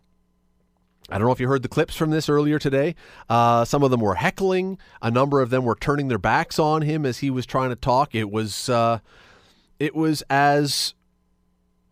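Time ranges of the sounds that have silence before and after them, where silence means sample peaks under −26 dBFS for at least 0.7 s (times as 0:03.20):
0:01.05–0:08.97
0:09.81–0:10.90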